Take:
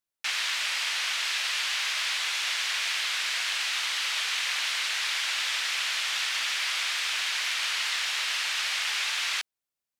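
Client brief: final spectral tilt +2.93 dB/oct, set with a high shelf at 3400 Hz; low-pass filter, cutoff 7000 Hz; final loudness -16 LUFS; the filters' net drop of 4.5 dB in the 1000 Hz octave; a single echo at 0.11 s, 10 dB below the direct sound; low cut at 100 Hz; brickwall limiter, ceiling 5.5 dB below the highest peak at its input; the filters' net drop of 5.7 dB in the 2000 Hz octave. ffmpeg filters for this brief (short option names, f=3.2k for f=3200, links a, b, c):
-af "highpass=100,lowpass=7k,equalizer=f=1k:t=o:g=-3.5,equalizer=f=2k:t=o:g=-4.5,highshelf=f=3.4k:g=-5,alimiter=level_in=2.5dB:limit=-24dB:level=0:latency=1,volume=-2.5dB,aecho=1:1:110:0.316,volume=17dB"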